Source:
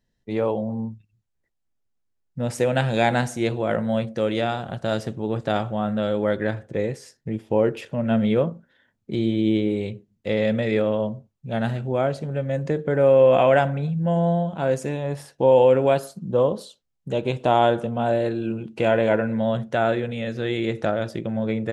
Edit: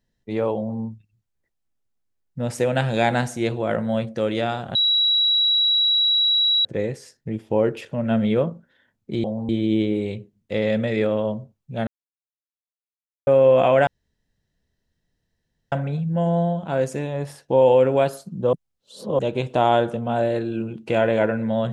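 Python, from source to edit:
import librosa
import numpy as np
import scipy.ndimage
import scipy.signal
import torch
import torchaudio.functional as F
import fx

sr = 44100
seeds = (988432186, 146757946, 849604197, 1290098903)

y = fx.edit(x, sr, fx.duplicate(start_s=0.55, length_s=0.25, to_s=9.24),
    fx.bleep(start_s=4.75, length_s=1.9, hz=3890.0, db=-15.5),
    fx.silence(start_s=11.62, length_s=1.4),
    fx.insert_room_tone(at_s=13.62, length_s=1.85),
    fx.reverse_span(start_s=16.43, length_s=0.66), tone=tone)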